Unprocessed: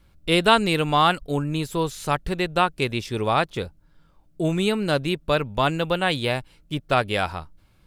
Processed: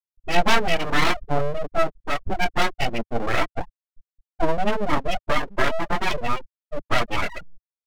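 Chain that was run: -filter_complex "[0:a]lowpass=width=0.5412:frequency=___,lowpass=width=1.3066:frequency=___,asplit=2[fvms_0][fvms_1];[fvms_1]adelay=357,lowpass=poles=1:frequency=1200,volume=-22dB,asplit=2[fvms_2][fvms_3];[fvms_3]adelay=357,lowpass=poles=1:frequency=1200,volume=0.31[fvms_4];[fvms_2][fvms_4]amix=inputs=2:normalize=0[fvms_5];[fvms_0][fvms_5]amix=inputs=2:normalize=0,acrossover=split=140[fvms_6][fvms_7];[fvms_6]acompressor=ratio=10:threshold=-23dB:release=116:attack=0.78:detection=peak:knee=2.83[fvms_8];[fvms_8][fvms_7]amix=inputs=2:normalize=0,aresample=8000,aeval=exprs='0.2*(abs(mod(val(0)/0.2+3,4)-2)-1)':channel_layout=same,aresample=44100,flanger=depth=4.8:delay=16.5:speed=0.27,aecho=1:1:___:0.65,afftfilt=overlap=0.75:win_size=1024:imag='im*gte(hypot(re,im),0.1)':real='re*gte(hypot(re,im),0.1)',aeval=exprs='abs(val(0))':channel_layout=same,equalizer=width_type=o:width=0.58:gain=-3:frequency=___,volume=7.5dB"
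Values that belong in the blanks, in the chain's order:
3000, 3000, 3.1, 88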